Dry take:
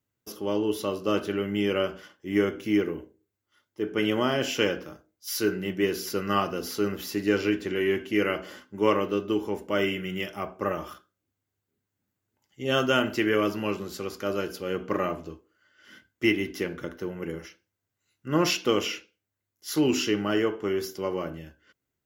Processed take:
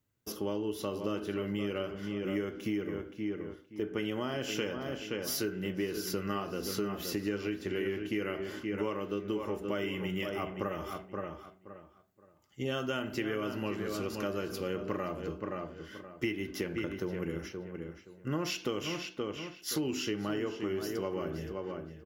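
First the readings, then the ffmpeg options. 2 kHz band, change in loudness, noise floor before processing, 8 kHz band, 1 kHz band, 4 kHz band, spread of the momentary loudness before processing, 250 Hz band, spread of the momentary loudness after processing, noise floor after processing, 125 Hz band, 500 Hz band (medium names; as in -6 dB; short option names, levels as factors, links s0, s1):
-8.5 dB, -8.0 dB, -84 dBFS, -5.0 dB, -9.0 dB, -8.0 dB, 11 LU, -7.0 dB, 7 LU, -60 dBFS, -4.0 dB, -7.5 dB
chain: -filter_complex "[0:a]lowshelf=f=160:g=5.5,asplit=2[s0][s1];[s1]adelay=523,lowpass=f=2900:p=1,volume=0.335,asplit=2[s2][s3];[s3]adelay=523,lowpass=f=2900:p=1,volume=0.25,asplit=2[s4][s5];[s5]adelay=523,lowpass=f=2900:p=1,volume=0.25[s6];[s0][s2][s4][s6]amix=inputs=4:normalize=0,acompressor=threshold=0.0282:ratio=6"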